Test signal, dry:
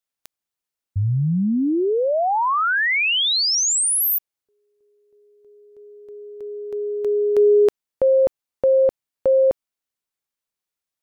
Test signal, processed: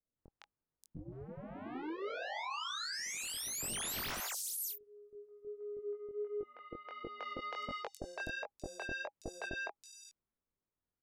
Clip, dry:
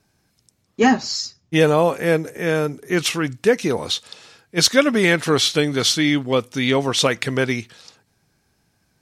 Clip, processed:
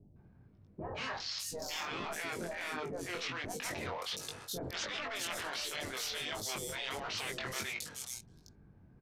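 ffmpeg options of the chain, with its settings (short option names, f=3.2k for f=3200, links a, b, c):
-filter_complex "[0:a]lowshelf=f=88:g=5.5,bandreject=f=810:w=25,adynamicsmooth=sensitivity=4.5:basefreq=870,aresample=32000,aresample=44100,acrossover=split=640|5500[a][b][c];[b]adelay=160[d];[c]adelay=580[e];[a][d][e]amix=inputs=3:normalize=0,afftfilt=real='re*lt(hypot(re,im),0.2)':imag='im*lt(hypot(re,im),0.2)':win_size=1024:overlap=0.75,areverse,acompressor=threshold=-45dB:ratio=5:attack=4.8:release=75:knee=1:detection=peak,areverse,flanger=delay=19.5:depth=3.8:speed=1.4,volume=9dB"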